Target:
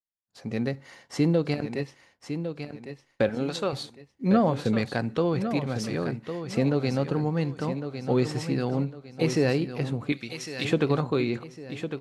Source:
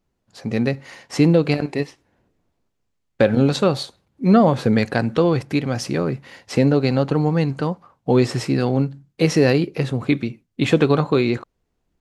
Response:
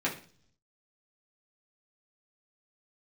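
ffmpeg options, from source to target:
-filter_complex "[0:a]asettb=1/sr,asplit=3[a][b][c];[a]atrim=end=3.294[d];[b]atrim=start=3.29:end=3.73,asetpts=PTS-STARTPTS,afade=t=in:d=0.004:c=qsin,afade=t=out:st=0.436:d=0.004:c=qsin,equalizer=f=70:w=0.36:g=-13[e];[c]atrim=start=3.726[f];[d][e]acrossfade=d=0.004:c1=hsin:c2=qsin[g];[g][f]acrossfade=d=0.004:c1=qsin:c2=hsin,asplit=2[h][i];[i]aecho=0:1:1105|2210|3315|4420:0.355|0.117|0.0386|0.0128[j];[h][j]amix=inputs=2:normalize=0,agate=range=-33dB:threshold=-48dB:ratio=3:detection=peak,asettb=1/sr,asplit=3[k][l][m];[k]atrim=end=0.644[n];[l]atrim=start=0.64:end=1.53,asetpts=PTS-STARTPTS,afade=t=in:d=0.004:c=qsin,afade=t=out:st=0.886:d=0.004:c=qsin,bandreject=f=2.5k:w=9.7[o];[m]atrim=start=1.526[p];[n][o]acrossfade=d=0.004:c1=hsin:c2=qsin[q];[q][p]acrossfade=d=0.004:c1=qsin:c2=hsin,asettb=1/sr,asplit=3[r][s][t];[r]atrim=end=10.124[u];[s]atrim=start=10.12:end=10.65,asetpts=PTS-STARTPTS,afade=t=in:d=0.004:c=qsin,afade=t=out:st=0.526:d=0.004:c=qsin,tiltshelf=f=1.2k:g=-8[v];[t]atrim=start=10.646[w];[u][v]acrossfade=d=0.004:c1=hsin:c2=qsin[x];[x][w]acrossfade=d=0.004:c1=qsin:c2=hsin,volume=-8dB"

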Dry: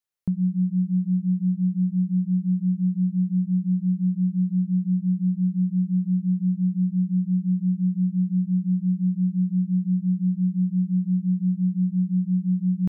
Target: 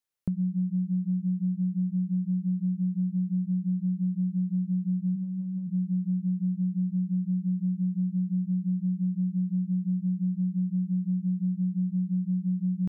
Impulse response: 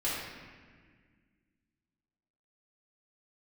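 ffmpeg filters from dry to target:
-filter_complex "[0:a]acompressor=threshold=-25dB:ratio=6,asplit=3[a][b][c];[a]afade=t=out:st=5.15:d=0.02[d];[b]bandreject=f=60:t=h:w=6,bandreject=f=120:t=h:w=6,bandreject=f=180:t=h:w=6,bandreject=f=240:t=h:w=6,bandreject=f=300:t=h:w=6,bandreject=f=360:t=h:w=6,bandreject=f=420:t=h:w=6,bandreject=f=480:t=h:w=6,bandreject=f=540:t=h:w=6,afade=t=in:st=5.15:d=0.02,afade=t=out:st=5.67:d=0.02[e];[c]afade=t=in:st=5.67:d=0.02[f];[d][e][f]amix=inputs=3:normalize=0"

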